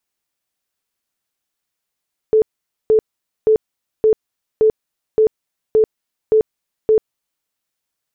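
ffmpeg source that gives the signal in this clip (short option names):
-f lavfi -i "aevalsrc='0.376*sin(2*PI*436*mod(t,0.57))*lt(mod(t,0.57),39/436)':d=5.13:s=44100"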